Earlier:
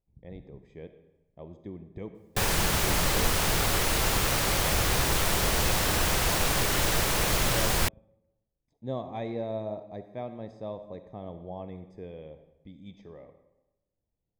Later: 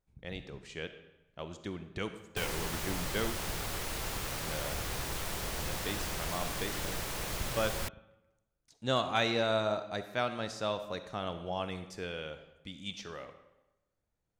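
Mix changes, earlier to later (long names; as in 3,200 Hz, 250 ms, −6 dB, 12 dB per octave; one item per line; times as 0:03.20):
speech: remove moving average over 31 samples
background −11.5 dB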